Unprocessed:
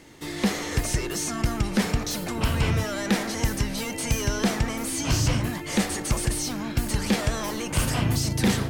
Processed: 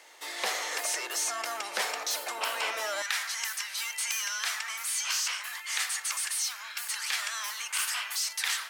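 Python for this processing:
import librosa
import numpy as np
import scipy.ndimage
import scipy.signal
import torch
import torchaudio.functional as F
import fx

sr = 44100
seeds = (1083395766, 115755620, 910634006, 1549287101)

y = fx.highpass(x, sr, hz=fx.steps((0.0, 590.0), (3.02, 1200.0)), slope=24)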